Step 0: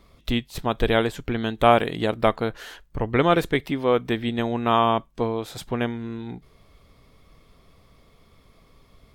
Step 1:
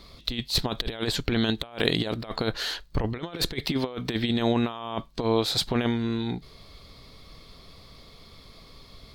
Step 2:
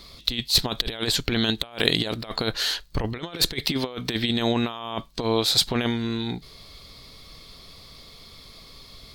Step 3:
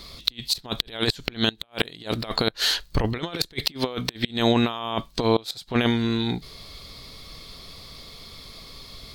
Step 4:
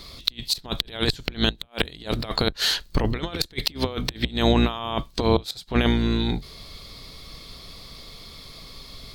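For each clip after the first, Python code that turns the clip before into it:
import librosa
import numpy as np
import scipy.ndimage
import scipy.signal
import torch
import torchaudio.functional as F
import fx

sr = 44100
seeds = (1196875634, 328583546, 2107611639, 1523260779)

y1 = fx.peak_eq(x, sr, hz=4300.0, db=14.0, octaves=0.65)
y1 = fx.over_compress(y1, sr, threshold_db=-26.0, ratio=-0.5)
y2 = fx.high_shelf(y1, sr, hz=2600.0, db=8.5)
y3 = fx.gate_flip(y2, sr, shuts_db=-11.0, range_db=-24)
y3 = F.gain(torch.from_numpy(y3), 3.5).numpy()
y4 = fx.octave_divider(y3, sr, octaves=2, level_db=-1.0)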